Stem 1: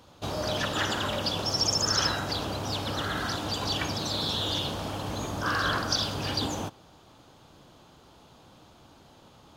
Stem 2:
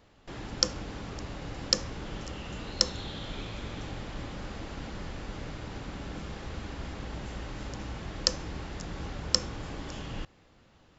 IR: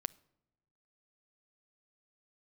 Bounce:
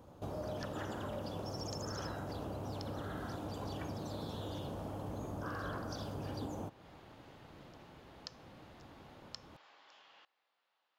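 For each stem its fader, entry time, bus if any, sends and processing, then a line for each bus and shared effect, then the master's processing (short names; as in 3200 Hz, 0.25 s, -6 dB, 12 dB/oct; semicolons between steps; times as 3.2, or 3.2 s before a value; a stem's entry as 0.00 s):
-0.5 dB, 0.00 s, no send, EQ curve 580 Hz 0 dB, 4000 Hz -17 dB, 12000 Hz -6 dB
-15.5 dB, 0.00 s, no send, Chebyshev band-pass 820–4200 Hz, order 2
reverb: off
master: compressor 2:1, threshold -45 dBFS, peak gain reduction 9.5 dB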